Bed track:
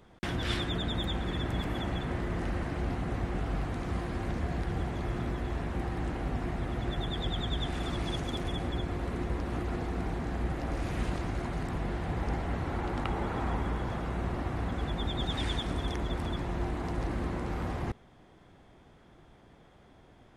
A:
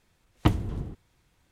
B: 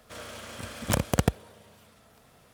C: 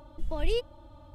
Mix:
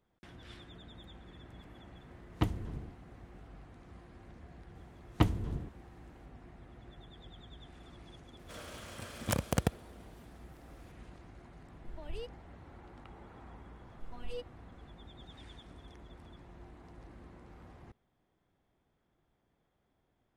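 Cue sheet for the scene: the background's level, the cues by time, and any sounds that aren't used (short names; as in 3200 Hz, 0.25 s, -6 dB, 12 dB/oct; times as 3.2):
bed track -20 dB
1.96 add A -8.5 dB
4.75 add A -4.5 dB
8.39 add B -6.5 dB
11.66 add C -15 dB
13.81 add C -12 dB + robotiser 244 Hz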